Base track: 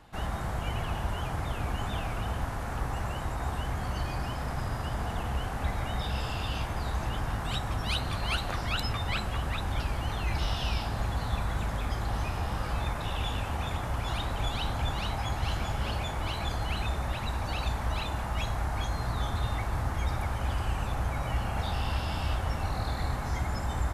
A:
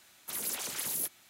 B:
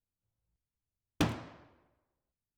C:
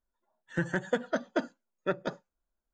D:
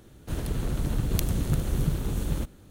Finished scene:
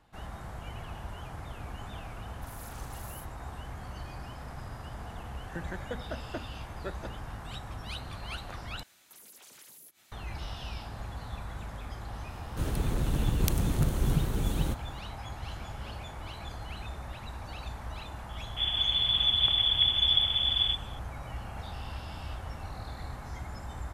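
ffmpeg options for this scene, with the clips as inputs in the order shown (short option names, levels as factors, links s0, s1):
-filter_complex "[1:a]asplit=2[s0][s1];[4:a]asplit=2[s2][s3];[0:a]volume=0.355[s4];[s0]asplit=2[s5][s6];[s6]adelay=40,volume=0.708[s7];[s5][s7]amix=inputs=2:normalize=0[s8];[3:a]alimiter=limit=0.1:level=0:latency=1:release=71[s9];[s1]acompressor=threshold=0.00355:ratio=6:attack=3.2:release=140:knee=1:detection=peak[s10];[s3]lowpass=f=3000:t=q:w=0.5098,lowpass=f=3000:t=q:w=0.6013,lowpass=f=3000:t=q:w=0.9,lowpass=f=3000:t=q:w=2.563,afreqshift=-3500[s11];[s4]asplit=2[s12][s13];[s12]atrim=end=8.834[s14];[s10]atrim=end=1.29,asetpts=PTS-STARTPTS,volume=0.794[s15];[s13]atrim=start=10.116[s16];[s8]atrim=end=1.29,asetpts=PTS-STARTPTS,volume=0.141,afade=t=in:d=0.004:c=hsin,afade=t=out:st=1.286:d=0.004:c=hsin,adelay=2140[s17];[s9]atrim=end=2.73,asetpts=PTS-STARTPTS,volume=0.447,afade=t=in:d=0.004:c=hsin,afade=t=out:st=2.726:d=0.004:c=hsin,adelay=4980[s18];[s2]atrim=end=2.7,asetpts=PTS-STARTPTS,volume=0.891,afade=t=in:d=0.004:c=hsin,afade=t=out:st=2.696:d=0.004:c=hsin,adelay=12290[s19];[s11]atrim=end=2.7,asetpts=PTS-STARTPTS,volume=0.944,afade=t=in:d=0.004:c=hsin,afade=t=out:st=2.696:d=0.004:c=hsin,adelay=18290[s20];[s14][s15]acrossfade=d=0.004:c1=hsin:c2=hsin[s21];[s21][s16]acrossfade=d=0.004:c1=hsin:c2=hsin[s22];[s22][s17][s18][s19][s20]amix=inputs=5:normalize=0"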